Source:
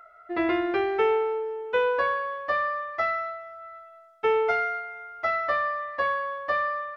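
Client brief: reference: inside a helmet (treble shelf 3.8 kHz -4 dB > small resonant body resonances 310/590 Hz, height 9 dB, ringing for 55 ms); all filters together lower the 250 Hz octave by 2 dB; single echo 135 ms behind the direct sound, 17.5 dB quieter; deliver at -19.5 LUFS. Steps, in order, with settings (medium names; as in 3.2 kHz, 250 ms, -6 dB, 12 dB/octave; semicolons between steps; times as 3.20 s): peaking EQ 250 Hz -3.5 dB; treble shelf 3.8 kHz -4 dB; delay 135 ms -17.5 dB; small resonant body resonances 310/590 Hz, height 9 dB, ringing for 55 ms; trim +6.5 dB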